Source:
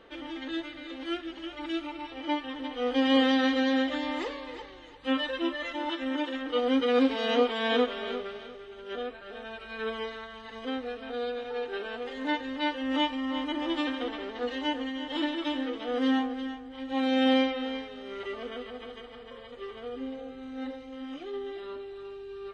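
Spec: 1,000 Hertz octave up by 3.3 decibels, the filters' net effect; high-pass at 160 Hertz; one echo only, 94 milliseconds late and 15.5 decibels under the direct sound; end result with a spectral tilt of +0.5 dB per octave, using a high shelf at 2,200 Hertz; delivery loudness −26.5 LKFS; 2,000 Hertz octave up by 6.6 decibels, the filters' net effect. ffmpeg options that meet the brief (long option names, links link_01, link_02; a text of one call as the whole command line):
ffmpeg -i in.wav -af "highpass=160,equalizer=frequency=1000:width_type=o:gain=3,equalizer=frequency=2000:width_type=o:gain=9,highshelf=frequency=2200:gain=-4,aecho=1:1:94:0.168,volume=2.5dB" out.wav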